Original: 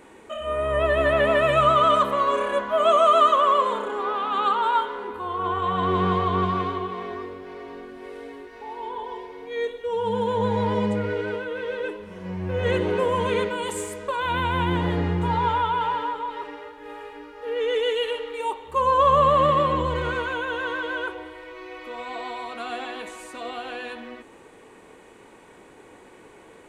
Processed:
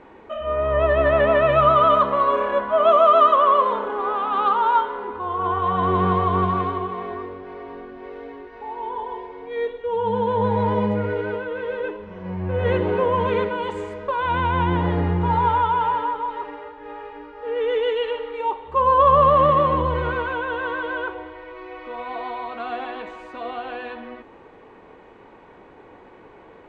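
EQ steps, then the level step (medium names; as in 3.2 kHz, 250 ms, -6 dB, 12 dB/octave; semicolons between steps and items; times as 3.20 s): distance through air 220 m; bass shelf 130 Hz +5.5 dB; peaking EQ 850 Hz +5 dB 1.6 oct; 0.0 dB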